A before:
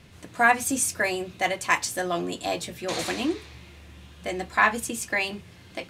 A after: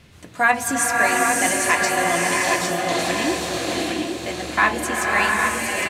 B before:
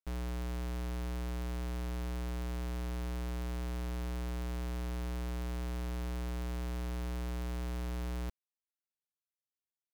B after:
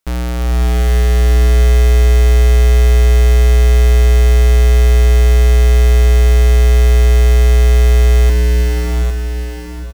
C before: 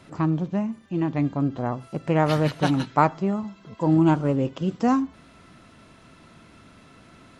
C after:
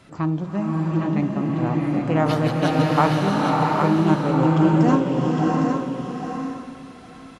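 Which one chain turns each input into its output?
hum removal 46.78 Hz, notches 22
on a send: repeating echo 808 ms, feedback 16%, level −5.5 dB
on the sum: slow-attack reverb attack 700 ms, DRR −1.5 dB
normalise the peak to −3 dBFS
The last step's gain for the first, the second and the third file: +2.5, +19.5, 0.0 decibels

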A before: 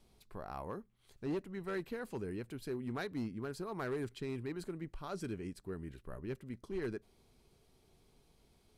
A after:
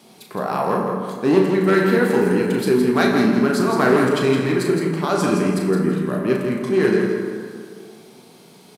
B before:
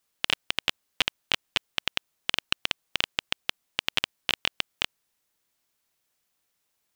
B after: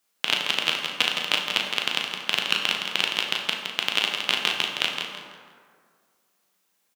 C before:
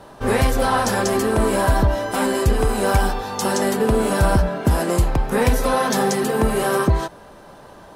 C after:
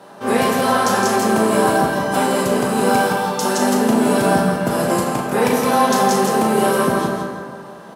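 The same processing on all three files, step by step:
Chebyshev high-pass filter 170 Hz, order 3
dynamic equaliser 1,900 Hz, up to −3 dB, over −45 dBFS, Q 4.5
double-tracking delay 37 ms −8 dB
on a send: repeating echo 165 ms, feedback 29%, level −6 dB
on the sum: dense smooth reverb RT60 2 s, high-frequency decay 0.45×, DRR 1.5 dB
normalise the peak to −2 dBFS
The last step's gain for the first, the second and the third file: +20.5, +2.5, 0.0 decibels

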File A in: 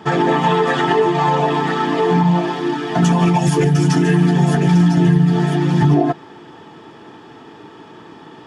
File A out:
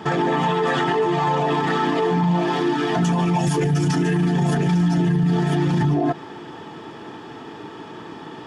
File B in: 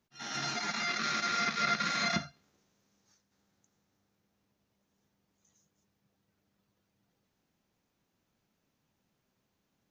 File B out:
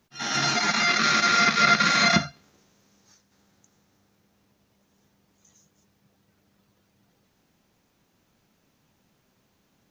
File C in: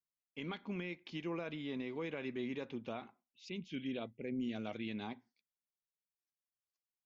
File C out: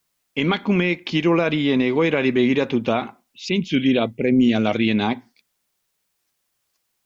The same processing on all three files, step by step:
brickwall limiter −15.5 dBFS
loudness normalisation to −20 LKFS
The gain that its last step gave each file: +3.0, +11.5, +22.5 decibels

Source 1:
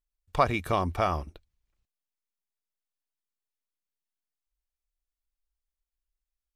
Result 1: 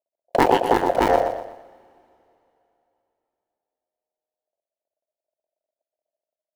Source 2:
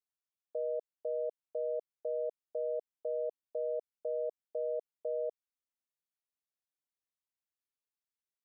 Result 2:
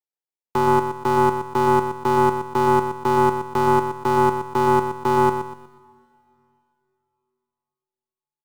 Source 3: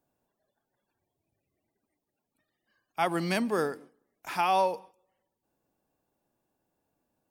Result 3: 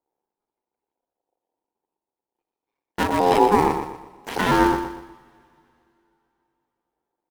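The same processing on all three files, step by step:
sub-harmonics by changed cycles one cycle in 2, muted
noise gate −56 dBFS, range −18 dB
low shelf with overshoot 400 Hz +11 dB, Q 1.5
in parallel at −3 dB: brickwall limiter −18 dBFS
on the sum: ring modulation 620 Hz
on a send: repeating echo 121 ms, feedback 37%, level −8.5 dB
on the sum: coupled-rooms reverb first 0.27 s, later 3.1 s, from −17 dB, DRR 16.5 dB
loudness normalisation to −20 LKFS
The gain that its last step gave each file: +4.5, +11.5, +5.0 decibels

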